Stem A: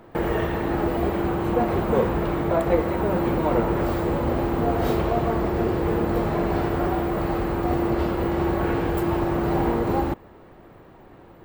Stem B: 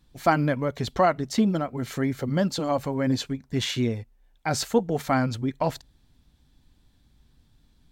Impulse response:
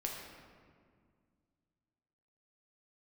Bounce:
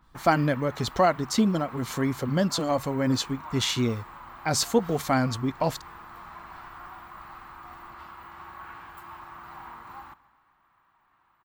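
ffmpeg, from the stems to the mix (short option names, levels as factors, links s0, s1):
-filter_complex "[0:a]lowshelf=f=730:t=q:w=3:g=-14,volume=0.168,asplit=2[s0][s1];[s1]volume=0.1[s2];[1:a]adynamicequalizer=threshold=0.00708:dfrequency=3400:dqfactor=0.7:tfrequency=3400:tqfactor=0.7:attack=5:release=100:ratio=0.375:range=2.5:mode=boostabove:tftype=highshelf,volume=0.944[s3];[s2]aecho=0:1:130|260|390|520|650|780|910|1040|1170|1300:1|0.6|0.36|0.216|0.13|0.0778|0.0467|0.028|0.0168|0.0101[s4];[s0][s3][s4]amix=inputs=3:normalize=0"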